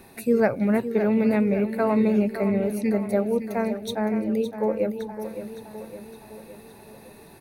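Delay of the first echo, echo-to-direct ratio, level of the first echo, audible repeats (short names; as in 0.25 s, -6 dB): 0.563 s, -9.0 dB, -10.5 dB, 5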